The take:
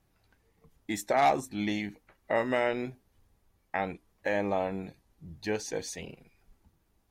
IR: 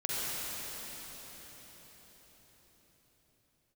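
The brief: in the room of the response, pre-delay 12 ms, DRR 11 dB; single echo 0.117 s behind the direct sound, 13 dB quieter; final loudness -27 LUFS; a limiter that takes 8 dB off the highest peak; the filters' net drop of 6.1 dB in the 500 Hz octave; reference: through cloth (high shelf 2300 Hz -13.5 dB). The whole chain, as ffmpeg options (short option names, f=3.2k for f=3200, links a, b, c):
-filter_complex "[0:a]equalizer=f=500:t=o:g=-7,alimiter=level_in=1dB:limit=-24dB:level=0:latency=1,volume=-1dB,aecho=1:1:117:0.224,asplit=2[a][b];[1:a]atrim=start_sample=2205,adelay=12[c];[b][c]afir=irnorm=-1:irlink=0,volume=-19dB[d];[a][d]amix=inputs=2:normalize=0,highshelf=f=2.3k:g=-13.5,volume=12.5dB"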